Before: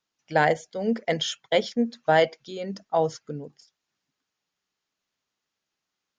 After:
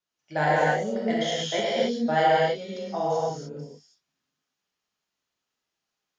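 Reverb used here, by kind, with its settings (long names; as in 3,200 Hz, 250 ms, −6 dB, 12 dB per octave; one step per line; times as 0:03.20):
reverb whose tail is shaped and stops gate 330 ms flat, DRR −8 dB
level −8.5 dB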